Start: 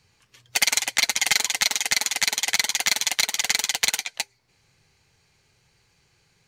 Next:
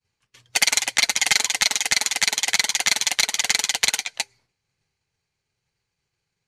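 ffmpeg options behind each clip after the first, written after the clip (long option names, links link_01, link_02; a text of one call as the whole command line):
ffmpeg -i in.wav -af "agate=range=-33dB:threshold=-52dB:ratio=3:detection=peak,lowpass=frequency=12000:width=0.5412,lowpass=frequency=12000:width=1.3066,volume=2dB" out.wav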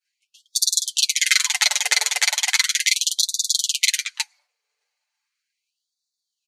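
ffmpeg -i in.wav -af "aecho=1:1:6.8:0.64,afftfilt=real='re*gte(b*sr/1024,410*pow(3500/410,0.5+0.5*sin(2*PI*0.37*pts/sr)))':imag='im*gte(b*sr/1024,410*pow(3500/410,0.5+0.5*sin(2*PI*0.37*pts/sr)))':win_size=1024:overlap=0.75" out.wav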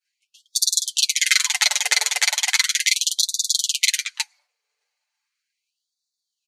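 ffmpeg -i in.wav -af anull out.wav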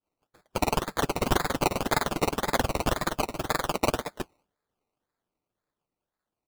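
ffmpeg -i in.wav -af "acrusher=samples=21:mix=1:aa=0.000001:lfo=1:lforange=12.6:lforate=1.9,volume=-6.5dB" out.wav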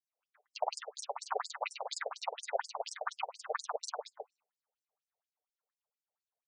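ffmpeg -i in.wav -af "afftfilt=real='re*between(b*sr/1024,560*pow(7000/560,0.5+0.5*sin(2*PI*4.2*pts/sr))/1.41,560*pow(7000/560,0.5+0.5*sin(2*PI*4.2*pts/sr))*1.41)':imag='im*between(b*sr/1024,560*pow(7000/560,0.5+0.5*sin(2*PI*4.2*pts/sr))/1.41,560*pow(7000/560,0.5+0.5*sin(2*PI*4.2*pts/sr))*1.41)':win_size=1024:overlap=0.75,volume=-3dB" out.wav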